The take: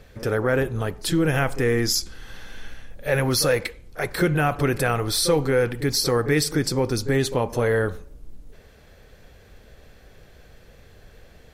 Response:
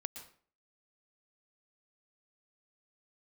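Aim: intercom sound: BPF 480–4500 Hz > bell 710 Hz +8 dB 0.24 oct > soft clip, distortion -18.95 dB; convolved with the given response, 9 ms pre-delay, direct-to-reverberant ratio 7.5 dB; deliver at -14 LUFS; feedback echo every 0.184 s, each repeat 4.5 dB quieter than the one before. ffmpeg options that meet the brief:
-filter_complex "[0:a]aecho=1:1:184|368|552|736|920|1104|1288|1472|1656:0.596|0.357|0.214|0.129|0.0772|0.0463|0.0278|0.0167|0.01,asplit=2[a][b];[1:a]atrim=start_sample=2205,adelay=9[c];[b][c]afir=irnorm=-1:irlink=0,volume=-5.5dB[d];[a][d]amix=inputs=2:normalize=0,highpass=480,lowpass=4.5k,equalizer=f=710:t=o:w=0.24:g=8,asoftclip=threshold=-14dB,volume=11dB"

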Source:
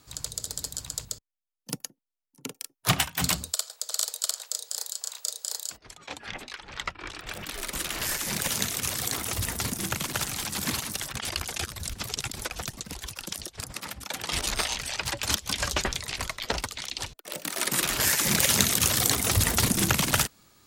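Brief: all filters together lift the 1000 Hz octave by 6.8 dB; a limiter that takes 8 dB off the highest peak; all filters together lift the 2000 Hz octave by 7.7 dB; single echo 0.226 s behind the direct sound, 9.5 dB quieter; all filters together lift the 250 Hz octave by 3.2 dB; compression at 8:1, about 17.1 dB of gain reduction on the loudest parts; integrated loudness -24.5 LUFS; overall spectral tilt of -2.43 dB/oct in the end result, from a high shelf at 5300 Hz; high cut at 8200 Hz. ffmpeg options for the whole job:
-af "lowpass=8.2k,equalizer=f=250:t=o:g=4,equalizer=f=1k:t=o:g=6,equalizer=f=2k:t=o:g=8.5,highshelf=f=5.3k:g=-5,acompressor=threshold=-33dB:ratio=8,alimiter=limit=-23.5dB:level=0:latency=1,aecho=1:1:226:0.335,volume=13dB"

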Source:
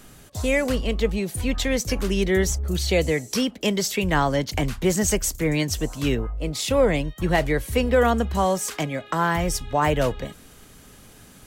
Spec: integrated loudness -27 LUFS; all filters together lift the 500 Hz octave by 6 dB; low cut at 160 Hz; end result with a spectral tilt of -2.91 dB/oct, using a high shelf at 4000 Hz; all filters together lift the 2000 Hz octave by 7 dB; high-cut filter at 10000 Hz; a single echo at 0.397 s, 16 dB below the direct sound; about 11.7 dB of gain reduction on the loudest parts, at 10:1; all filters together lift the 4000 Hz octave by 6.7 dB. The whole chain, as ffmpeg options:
-af "highpass=160,lowpass=10k,equalizer=f=500:t=o:g=6.5,equalizer=f=2k:t=o:g=6,highshelf=f=4k:g=4.5,equalizer=f=4k:t=o:g=4,acompressor=threshold=-20dB:ratio=10,aecho=1:1:397:0.158,volume=-2.5dB"

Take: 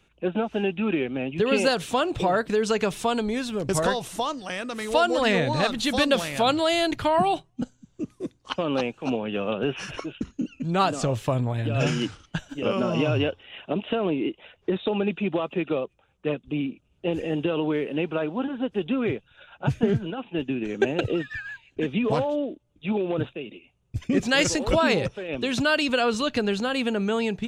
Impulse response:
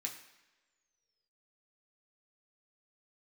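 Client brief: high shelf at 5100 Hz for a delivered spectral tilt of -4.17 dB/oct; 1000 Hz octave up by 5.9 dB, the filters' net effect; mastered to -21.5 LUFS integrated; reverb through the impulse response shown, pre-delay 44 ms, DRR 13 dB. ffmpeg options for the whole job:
-filter_complex "[0:a]equalizer=f=1k:t=o:g=7.5,highshelf=f=5.1k:g=9,asplit=2[a][b];[1:a]atrim=start_sample=2205,adelay=44[c];[b][c]afir=irnorm=-1:irlink=0,volume=-12dB[d];[a][d]amix=inputs=2:normalize=0,volume=1.5dB"

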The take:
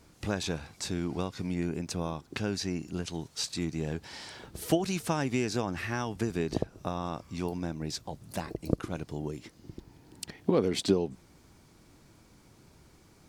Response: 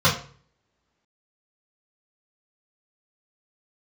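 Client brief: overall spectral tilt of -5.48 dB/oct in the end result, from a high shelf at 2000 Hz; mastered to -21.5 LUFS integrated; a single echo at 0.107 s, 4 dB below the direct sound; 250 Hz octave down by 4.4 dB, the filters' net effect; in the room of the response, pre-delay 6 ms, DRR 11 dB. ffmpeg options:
-filter_complex "[0:a]equalizer=f=250:t=o:g=-6.5,highshelf=f=2k:g=-3,aecho=1:1:107:0.631,asplit=2[a][b];[1:a]atrim=start_sample=2205,adelay=6[c];[b][c]afir=irnorm=-1:irlink=0,volume=-30dB[d];[a][d]amix=inputs=2:normalize=0,volume=12dB"

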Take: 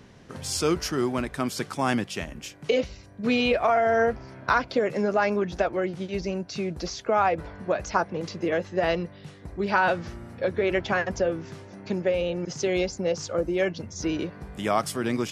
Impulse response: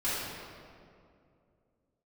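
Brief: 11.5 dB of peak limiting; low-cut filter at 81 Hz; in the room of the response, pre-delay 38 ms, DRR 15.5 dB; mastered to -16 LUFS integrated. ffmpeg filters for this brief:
-filter_complex "[0:a]highpass=81,alimiter=limit=-20dB:level=0:latency=1,asplit=2[a][b];[1:a]atrim=start_sample=2205,adelay=38[c];[b][c]afir=irnorm=-1:irlink=0,volume=-24.5dB[d];[a][d]amix=inputs=2:normalize=0,volume=14.5dB"

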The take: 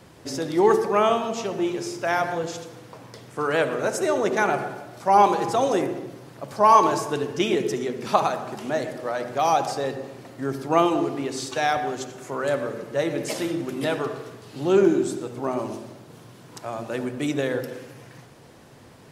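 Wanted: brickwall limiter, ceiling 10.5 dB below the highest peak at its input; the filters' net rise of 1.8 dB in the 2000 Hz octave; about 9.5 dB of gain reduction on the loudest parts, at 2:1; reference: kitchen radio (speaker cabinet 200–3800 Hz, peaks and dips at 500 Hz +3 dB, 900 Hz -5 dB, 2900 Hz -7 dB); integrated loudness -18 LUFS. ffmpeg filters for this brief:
-af "equalizer=f=2k:t=o:g=3.5,acompressor=threshold=-28dB:ratio=2,alimiter=limit=-22.5dB:level=0:latency=1,highpass=200,equalizer=f=500:t=q:w=4:g=3,equalizer=f=900:t=q:w=4:g=-5,equalizer=f=2.9k:t=q:w=4:g=-7,lowpass=f=3.8k:w=0.5412,lowpass=f=3.8k:w=1.3066,volume=15dB"

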